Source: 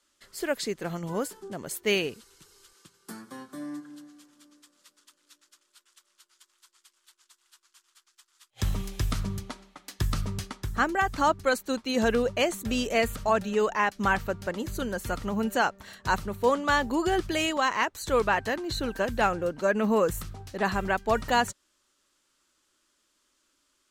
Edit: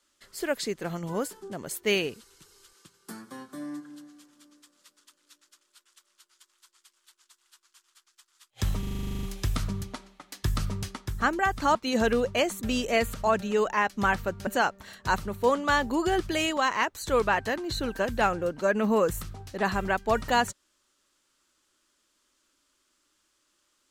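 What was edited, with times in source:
8.79 stutter 0.04 s, 12 plays
11.31–11.77 cut
14.49–15.47 cut

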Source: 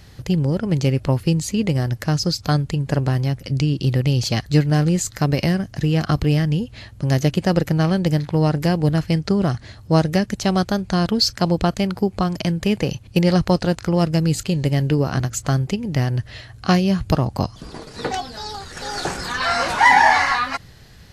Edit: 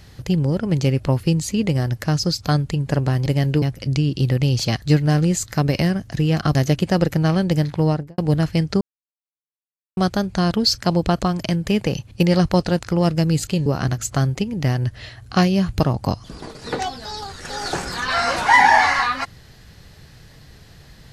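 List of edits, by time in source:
6.19–7.1 cut
8.37–8.73 studio fade out
9.36–10.52 mute
11.77–12.18 cut
14.62–14.98 move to 3.26

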